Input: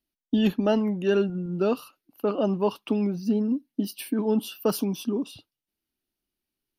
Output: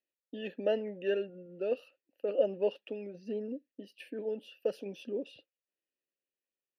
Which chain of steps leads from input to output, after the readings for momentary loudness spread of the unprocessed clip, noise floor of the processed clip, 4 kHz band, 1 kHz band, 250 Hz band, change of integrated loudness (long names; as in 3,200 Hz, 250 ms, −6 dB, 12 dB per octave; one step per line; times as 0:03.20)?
7 LU, below −85 dBFS, −12.0 dB, −16.0 dB, −18.0 dB, −9.5 dB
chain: sample-and-hold tremolo
formant filter e
level +7 dB